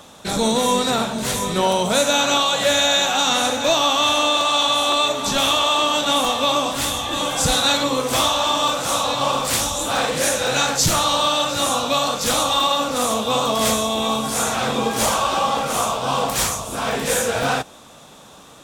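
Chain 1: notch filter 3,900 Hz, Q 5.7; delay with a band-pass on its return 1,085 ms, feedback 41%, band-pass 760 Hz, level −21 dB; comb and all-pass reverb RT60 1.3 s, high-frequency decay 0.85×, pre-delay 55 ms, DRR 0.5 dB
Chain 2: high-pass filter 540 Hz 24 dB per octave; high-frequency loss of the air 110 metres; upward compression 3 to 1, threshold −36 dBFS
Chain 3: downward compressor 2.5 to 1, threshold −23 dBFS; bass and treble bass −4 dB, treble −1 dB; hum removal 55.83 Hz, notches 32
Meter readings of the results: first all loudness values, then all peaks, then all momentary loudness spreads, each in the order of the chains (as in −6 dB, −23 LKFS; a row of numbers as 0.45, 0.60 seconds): −16.5, −21.5, −24.0 LKFS; −4.0, −7.5, −11.5 dBFS; 5, 6, 3 LU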